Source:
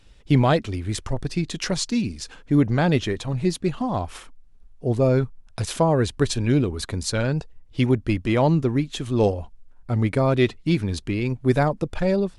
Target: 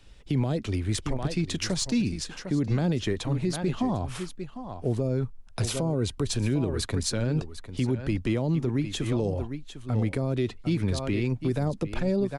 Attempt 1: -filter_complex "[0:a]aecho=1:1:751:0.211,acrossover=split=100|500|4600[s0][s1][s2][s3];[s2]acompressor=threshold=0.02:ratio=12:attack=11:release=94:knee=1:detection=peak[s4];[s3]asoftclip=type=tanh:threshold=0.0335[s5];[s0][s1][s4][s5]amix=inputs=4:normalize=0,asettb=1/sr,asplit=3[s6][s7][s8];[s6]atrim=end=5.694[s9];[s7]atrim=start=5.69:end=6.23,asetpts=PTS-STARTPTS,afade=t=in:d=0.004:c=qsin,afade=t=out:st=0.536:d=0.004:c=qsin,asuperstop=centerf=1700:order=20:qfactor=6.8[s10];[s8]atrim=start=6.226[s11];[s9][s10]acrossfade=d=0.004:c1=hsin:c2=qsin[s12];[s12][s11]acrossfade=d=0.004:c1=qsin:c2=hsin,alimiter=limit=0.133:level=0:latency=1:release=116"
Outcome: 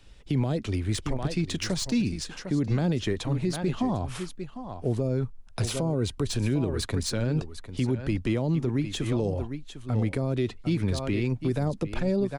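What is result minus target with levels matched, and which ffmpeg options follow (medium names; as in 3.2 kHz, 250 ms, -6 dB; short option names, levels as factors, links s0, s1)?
saturation: distortion +15 dB
-filter_complex "[0:a]aecho=1:1:751:0.211,acrossover=split=100|500|4600[s0][s1][s2][s3];[s2]acompressor=threshold=0.02:ratio=12:attack=11:release=94:knee=1:detection=peak[s4];[s3]asoftclip=type=tanh:threshold=0.126[s5];[s0][s1][s4][s5]amix=inputs=4:normalize=0,asettb=1/sr,asplit=3[s6][s7][s8];[s6]atrim=end=5.694[s9];[s7]atrim=start=5.69:end=6.23,asetpts=PTS-STARTPTS,afade=t=in:d=0.004:c=qsin,afade=t=out:st=0.536:d=0.004:c=qsin,asuperstop=centerf=1700:order=20:qfactor=6.8[s10];[s8]atrim=start=6.226[s11];[s9][s10]acrossfade=d=0.004:c1=hsin:c2=qsin[s12];[s12][s11]acrossfade=d=0.004:c1=qsin:c2=hsin,alimiter=limit=0.133:level=0:latency=1:release=116"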